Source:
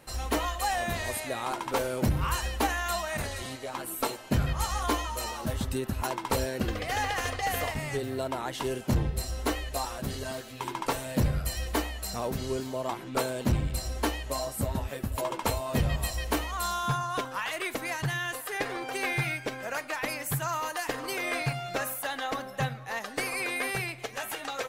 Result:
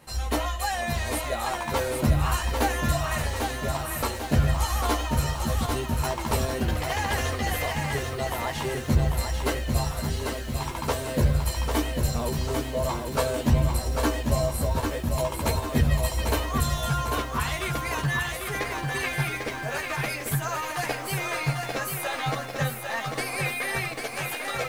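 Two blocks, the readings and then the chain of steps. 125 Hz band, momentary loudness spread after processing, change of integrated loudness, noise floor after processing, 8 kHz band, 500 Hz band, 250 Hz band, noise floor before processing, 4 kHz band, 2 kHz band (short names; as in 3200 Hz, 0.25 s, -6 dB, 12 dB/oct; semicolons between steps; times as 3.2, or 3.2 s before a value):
+6.5 dB, 5 LU, +4.0 dB, -34 dBFS, +3.0 dB, +3.5 dB, +4.0 dB, -43 dBFS, +3.0 dB, +3.0 dB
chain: chorus voices 4, 0.28 Hz, delay 13 ms, depth 1 ms; lo-fi delay 0.796 s, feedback 55%, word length 9-bit, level -4.5 dB; gain +4.5 dB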